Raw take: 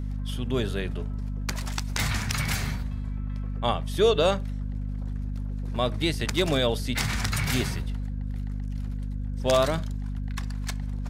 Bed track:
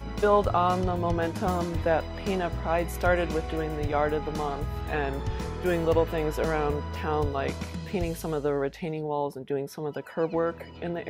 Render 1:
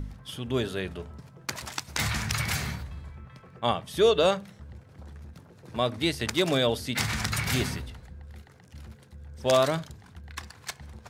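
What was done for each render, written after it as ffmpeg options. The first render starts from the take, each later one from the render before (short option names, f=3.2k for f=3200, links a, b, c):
-af "bandreject=f=50:t=h:w=4,bandreject=f=100:t=h:w=4,bandreject=f=150:t=h:w=4,bandreject=f=200:t=h:w=4,bandreject=f=250:t=h:w=4"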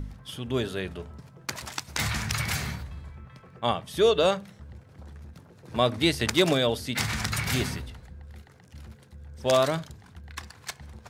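-filter_complex "[0:a]asplit=3[a][b][c];[a]atrim=end=5.712[d];[b]atrim=start=5.708:end=6.532,asetpts=PTS-STARTPTS,volume=3.5dB[e];[c]atrim=start=6.528[f];[d][e]acrossfade=d=0.004:c1=hsin:c2=hsin[g];[g][f]acrossfade=d=0.004:c1=hsin:c2=hsin"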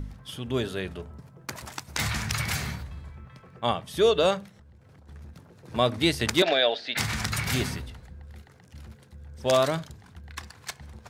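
-filter_complex "[0:a]asettb=1/sr,asplit=3[a][b][c];[a]atrim=end=1.014[d];[b]atrim=start=1.01:end=1.94,asetpts=PTS-STARTPTS,afade=t=in:d=0.004:c=qsin,afade=t=out:st=0.926:d=0.004:c=qsin,equalizer=f=4k:w=0.5:g=-5.5[e];[c]atrim=start=1.936[f];[d][e]acrossfade=d=0.004:c1=hsin:c2=qsin[g];[g][f]acrossfade=d=0.004:c1=qsin:c2=hsin,asettb=1/sr,asplit=3[h][i][j];[h]atrim=end=4.484[k];[i]atrim=start=4.48:end=5.09,asetpts=PTS-STARTPTS,afade=t=in:d=0.004:c=qsin,afade=t=out:st=0.606:d=0.004:c=qsin,acompressor=threshold=-49dB:ratio=10:attack=3.2:release=140:knee=1:detection=peak[l];[j]atrim=start=5.086[m];[k][l]acrossfade=d=0.004:c1=hsin:c2=qsin[n];[n][m]acrossfade=d=0.004:c1=qsin:c2=hsin,asettb=1/sr,asplit=3[o][p][q];[o]atrim=end=6.424[r];[p]atrim=start=6.42:end=6.97,asetpts=PTS-STARTPTS,afade=t=in:d=0.004:c=qsin,afade=t=out:st=0.546:d=0.004:c=qsin,highpass=470,equalizer=f=680:t=q:w=4:g=9,equalizer=f=1.1k:t=q:w=4:g=-6,equalizer=f=1.7k:t=q:w=4:g=8,equalizer=f=2.5k:t=q:w=4:g=4,equalizer=f=3.9k:t=q:w=4:g=7,lowpass=f=4.6k:w=0.5412,lowpass=f=4.6k:w=1.3066[s];[q]atrim=start=6.966[t];[r][s]acrossfade=d=0.004:c1=hsin:c2=qsin[u];[u][t]acrossfade=d=0.004:c1=qsin:c2=hsin"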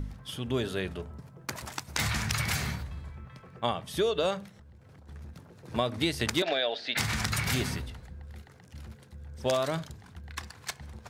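-af "acompressor=threshold=-24dB:ratio=6"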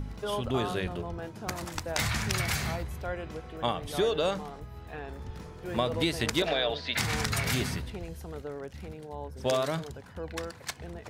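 -filter_complex "[1:a]volume=-12dB[a];[0:a][a]amix=inputs=2:normalize=0"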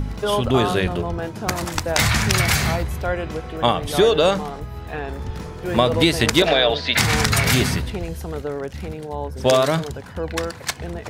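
-af "volume=11.5dB,alimiter=limit=-2dB:level=0:latency=1"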